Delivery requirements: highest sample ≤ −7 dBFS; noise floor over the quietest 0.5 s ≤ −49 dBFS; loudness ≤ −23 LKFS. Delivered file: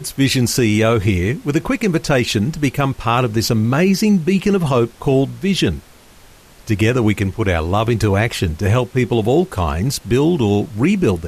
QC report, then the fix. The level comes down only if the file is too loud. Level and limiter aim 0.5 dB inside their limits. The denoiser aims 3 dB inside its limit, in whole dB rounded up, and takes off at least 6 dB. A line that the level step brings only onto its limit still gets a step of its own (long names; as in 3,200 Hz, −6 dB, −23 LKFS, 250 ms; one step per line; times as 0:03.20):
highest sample −5.5 dBFS: out of spec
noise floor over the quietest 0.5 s −44 dBFS: out of spec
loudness −17.0 LKFS: out of spec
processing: level −6.5 dB